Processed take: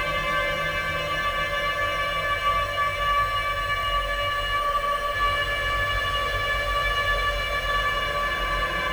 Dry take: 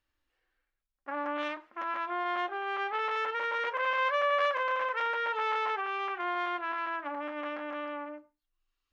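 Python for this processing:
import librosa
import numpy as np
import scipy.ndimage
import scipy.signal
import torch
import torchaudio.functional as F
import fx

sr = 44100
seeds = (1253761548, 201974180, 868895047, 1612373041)

p1 = fx.highpass(x, sr, hz=730.0, slope=6)
p2 = fx.high_shelf(p1, sr, hz=2100.0, db=10.5)
p3 = fx.sample_hold(p2, sr, seeds[0], rate_hz=1200.0, jitter_pct=0)
p4 = p2 + (p3 * 10.0 ** (-7.5 / 20.0))
p5 = fx.echo_feedback(p4, sr, ms=84, feedback_pct=49, wet_db=-5)
p6 = fx.paulstretch(p5, sr, seeds[1], factor=22.0, window_s=0.25, from_s=4.14)
y = fx.spec_freeze(p6, sr, seeds[2], at_s=4.63, hold_s=0.52)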